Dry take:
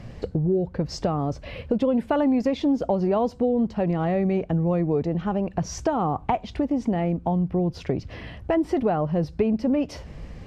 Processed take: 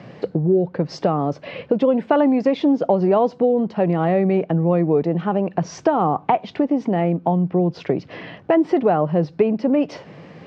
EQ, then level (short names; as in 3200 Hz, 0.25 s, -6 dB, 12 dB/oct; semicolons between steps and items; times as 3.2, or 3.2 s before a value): HPF 160 Hz 24 dB/oct; air absorption 160 m; bell 230 Hz -6 dB 0.39 oct; +7.0 dB